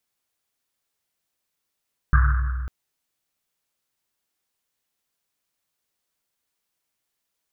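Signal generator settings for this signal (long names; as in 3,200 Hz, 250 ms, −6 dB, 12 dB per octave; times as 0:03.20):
drum after Risset length 0.55 s, pitch 63 Hz, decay 2.43 s, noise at 1,400 Hz, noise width 560 Hz, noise 20%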